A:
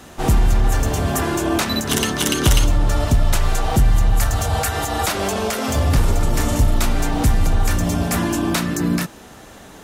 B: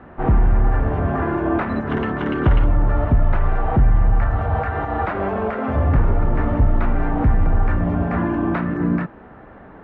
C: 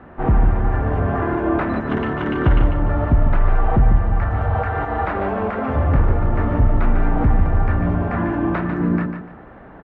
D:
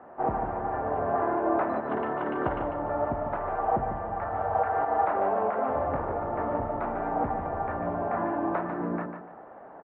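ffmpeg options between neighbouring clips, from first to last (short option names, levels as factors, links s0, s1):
-af "lowpass=f=1800:w=0.5412,lowpass=f=1800:w=1.3066"
-af "aecho=1:1:147|294|441:0.422|0.11|0.0285"
-af "bandpass=f=720:t=q:w=1.6:csg=0"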